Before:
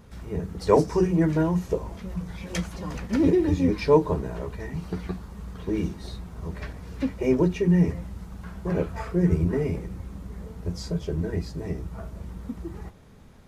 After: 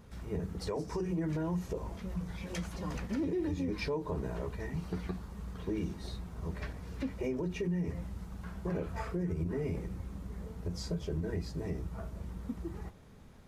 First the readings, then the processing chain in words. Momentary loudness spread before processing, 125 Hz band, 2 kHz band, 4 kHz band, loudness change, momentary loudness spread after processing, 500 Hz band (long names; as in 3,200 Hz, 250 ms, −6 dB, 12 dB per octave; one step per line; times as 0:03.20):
18 LU, −9.5 dB, −7.5 dB, −6.0 dB, −12.0 dB, 9 LU, −12.5 dB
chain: downward compressor, threshold −22 dBFS, peak gain reduction 10 dB
brickwall limiter −22 dBFS, peak gain reduction 8 dB
level −4.5 dB